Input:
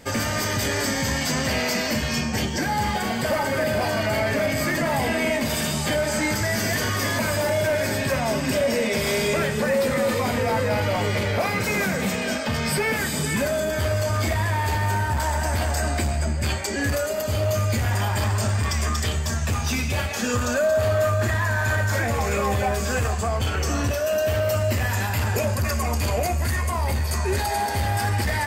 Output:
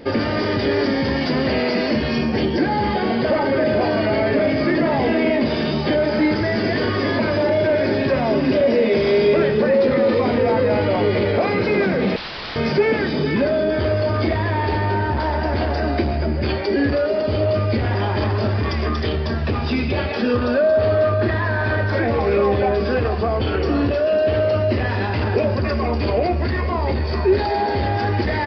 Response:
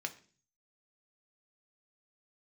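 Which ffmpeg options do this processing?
-filter_complex "[0:a]equalizer=f=360:t=o:w=1.3:g=13.5,asplit=2[a][b];[b]alimiter=limit=-16.5dB:level=0:latency=1,volume=1dB[c];[a][c]amix=inputs=2:normalize=0,asettb=1/sr,asplit=3[d][e][f];[d]atrim=end=12.164[g];[e]atrim=start=12.16:end=12.56,asetpts=PTS-STARTPTS,afade=t=in:d=0.004:c=qsin,afade=t=out:st=0.396:d=0.004:c=qsin,aeval=exprs='(mod(8.91*val(0)+1,2)-1)/8.91':c=same[h];[f]atrim=start=12.556[i];[g][h]acrossfade=d=0.004:c1=hsin:c2=qsin[j];[j][i]acrossfade=d=0.004:c1=qsin:c2=hsin,aresample=11025,aresample=44100,volume=-4.5dB"

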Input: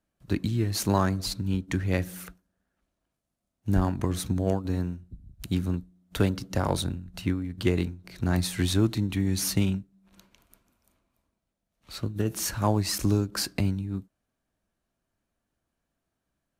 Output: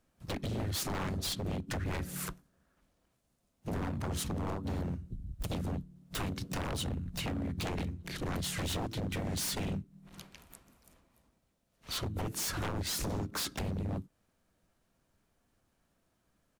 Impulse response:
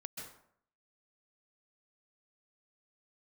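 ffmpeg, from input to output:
-filter_complex "[0:a]acompressor=threshold=-36dB:ratio=4,asplit=4[a][b][c][d];[b]asetrate=33038,aresample=44100,atempo=1.33484,volume=-17dB[e];[c]asetrate=35002,aresample=44100,atempo=1.25992,volume=-3dB[f];[d]asetrate=58866,aresample=44100,atempo=0.749154,volume=-16dB[g];[a][e][f][g]amix=inputs=4:normalize=0,aeval=exprs='0.02*(abs(mod(val(0)/0.02+3,4)-2)-1)':c=same,volume=4.5dB"

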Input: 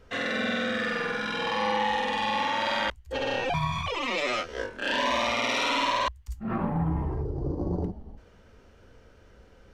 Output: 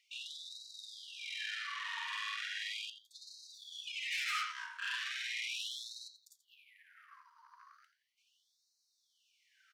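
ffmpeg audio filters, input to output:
-filter_complex "[0:a]flanger=delay=0.9:depth=8.9:regen=-61:speed=1.1:shape=triangular,alimiter=level_in=0.5dB:limit=-24dB:level=0:latency=1:release=33,volume=-0.5dB,asplit=2[a][b];[b]adelay=84,lowpass=f=4.3k:p=1,volume=-9dB,asplit=2[c][d];[d]adelay=84,lowpass=f=4.3k:p=1,volume=0.32,asplit=2[e][f];[f]adelay=84,lowpass=f=4.3k:p=1,volume=0.32,asplit=2[g][h];[h]adelay=84,lowpass=f=4.3k:p=1,volume=0.32[i];[c][e][g][i]amix=inputs=4:normalize=0[j];[a][j]amix=inputs=2:normalize=0,asplit=3[k][l][m];[k]afade=t=out:st=4.11:d=0.02[n];[l]acontrast=23,afade=t=in:st=4.11:d=0.02,afade=t=out:st=4.51:d=0.02[o];[m]afade=t=in:st=4.51:d=0.02[p];[n][o][p]amix=inputs=3:normalize=0,asoftclip=type=tanh:threshold=-30dB,afftfilt=real='re*gte(b*sr/1024,900*pow(3800/900,0.5+0.5*sin(2*PI*0.37*pts/sr)))':imag='im*gte(b*sr/1024,900*pow(3800/900,0.5+0.5*sin(2*PI*0.37*pts/sr)))':win_size=1024:overlap=0.75"

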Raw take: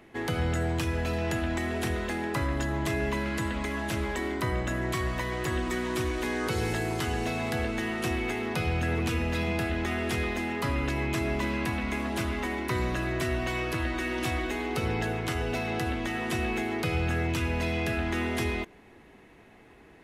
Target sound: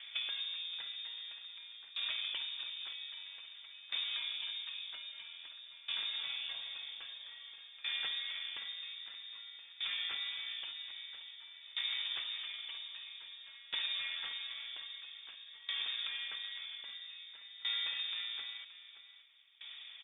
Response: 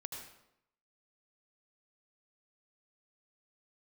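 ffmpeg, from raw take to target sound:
-af "acompressor=threshold=-39dB:ratio=12,asetrate=30296,aresample=44100,atempo=1.45565,aecho=1:1:574:0.398,lowpass=f=3.1k:t=q:w=0.5098,lowpass=f=3.1k:t=q:w=0.6013,lowpass=f=3.1k:t=q:w=0.9,lowpass=f=3.1k:t=q:w=2.563,afreqshift=-3700,aeval=exprs='val(0)*pow(10,-19*if(lt(mod(0.51*n/s,1),2*abs(0.51)/1000),1-mod(0.51*n/s,1)/(2*abs(0.51)/1000),(mod(0.51*n/s,1)-2*abs(0.51)/1000)/(1-2*abs(0.51)/1000))/20)':c=same,volume=5.5dB"

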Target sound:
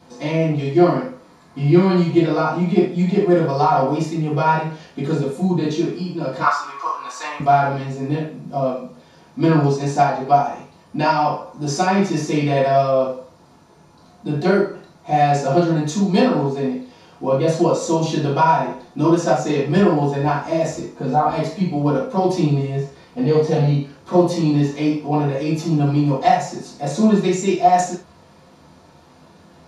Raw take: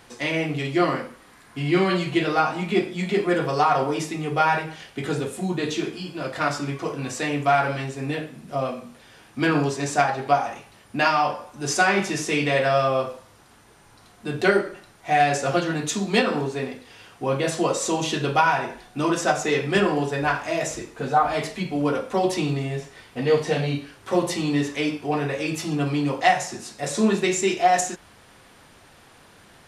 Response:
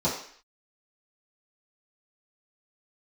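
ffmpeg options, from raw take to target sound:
-filter_complex "[0:a]asettb=1/sr,asplit=3[a][b][c];[a]atrim=end=6.424[d];[b]atrim=start=6.42:end=7.4,asetpts=PTS-STARTPTS,afade=t=in:d=0.004:c=qsin,afade=t=out:st=0.976:d=0.004:c=qsin,highpass=f=1.1k:t=q:w=4.9[e];[c]atrim=start=7.396[f];[d][e]acrossfade=d=0.004:c1=hsin:c2=qsin[g];[g][f]acrossfade=d=0.004:c1=qsin:c2=hsin[h];[1:a]atrim=start_sample=2205,atrim=end_sample=3969[i];[h][i]afir=irnorm=-1:irlink=0,volume=-10.5dB"

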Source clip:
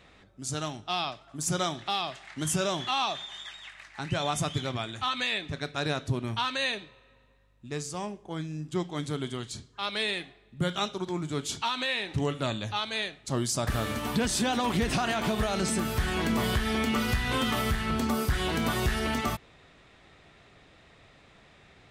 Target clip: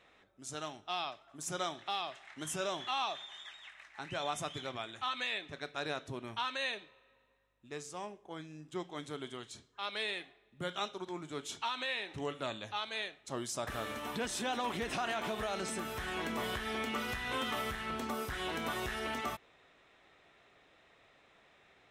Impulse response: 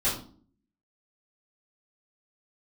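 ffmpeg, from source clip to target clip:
-af "bass=f=250:g=-12,treble=f=4k:g=-4,bandreject=f=4.6k:w=9.9,volume=-6dB"

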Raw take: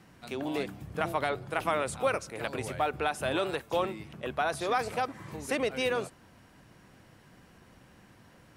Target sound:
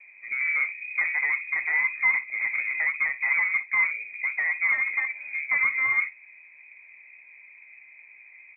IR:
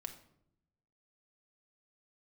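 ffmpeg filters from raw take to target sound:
-af "lowshelf=f=780:t=q:w=3:g=13,aresample=16000,asoftclip=type=tanh:threshold=-12.5dB,aresample=44100,lowpass=f=2.2k:t=q:w=0.5098,lowpass=f=2.2k:t=q:w=0.6013,lowpass=f=2.2k:t=q:w=0.9,lowpass=f=2.2k:t=q:w=2.563,afreqshift=-2600,aecho=1:1:16|60:0.376|0.168,volume=-7.5dB"

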